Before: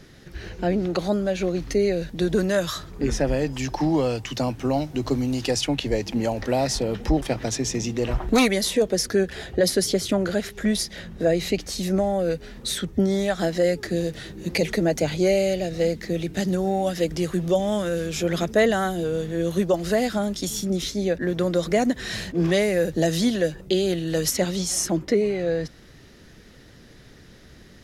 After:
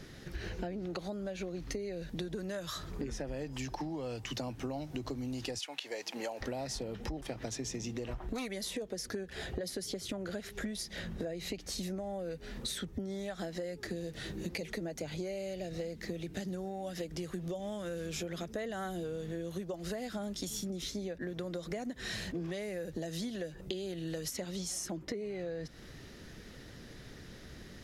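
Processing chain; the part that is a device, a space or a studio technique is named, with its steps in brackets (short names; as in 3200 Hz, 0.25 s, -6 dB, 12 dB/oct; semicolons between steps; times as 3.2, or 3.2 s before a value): 5.58–6.4 HPF 1000 Hz -> 470 Hz 12 dB/oct; serial compression, leveller first (compressor 2:1, threshold -23 dBFS, peak gain reduction 5 dB; compressor 10:1, threshold -34 dBFS, peak gain reduction 15 dB); gain -1.5 dB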